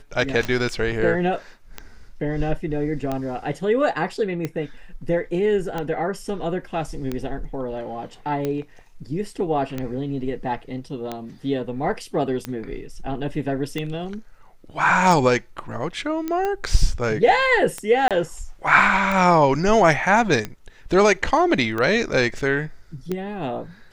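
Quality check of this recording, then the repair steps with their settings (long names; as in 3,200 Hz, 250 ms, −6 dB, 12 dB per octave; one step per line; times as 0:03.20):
scratch tick 45 rpm −13 dBFS
0:16.28: click −14 dBFS
0:18.08–0:18.11: drop-out 27 ms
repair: click removal
repair the gap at 0:18.08, 27 ms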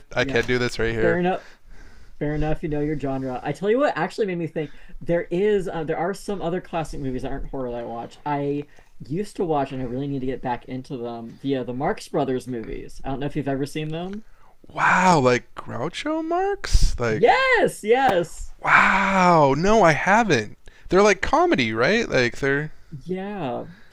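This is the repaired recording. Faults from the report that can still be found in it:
none of them is left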